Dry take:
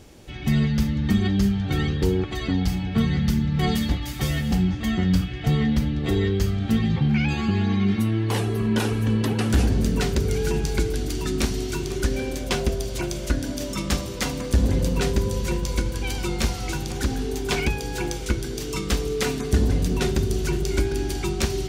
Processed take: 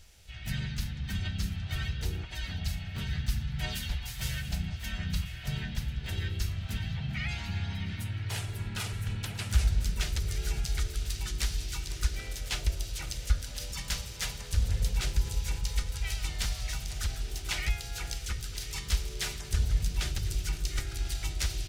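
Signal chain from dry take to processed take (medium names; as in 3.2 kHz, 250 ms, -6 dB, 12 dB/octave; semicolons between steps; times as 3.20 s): amplifier tone stack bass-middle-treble 10-0-10; harmony voices -3 st -1 dB, +5 st -11 dB; bass shelf 280 Hz +6.5 dB; band-stop 1.1 kHz, Q 8.8; on a send: feedback delay 1042 ms, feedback 31%, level -17 dB; on the sum: trim -6 dB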